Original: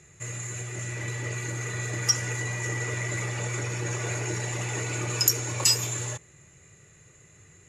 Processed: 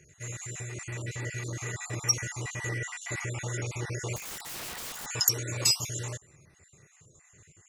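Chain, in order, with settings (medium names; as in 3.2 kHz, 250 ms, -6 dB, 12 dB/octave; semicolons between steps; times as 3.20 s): random holes in the spectrogram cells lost 38%; 4.16–5.06 s: integer overflow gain 32.5 dB; trim -2 dB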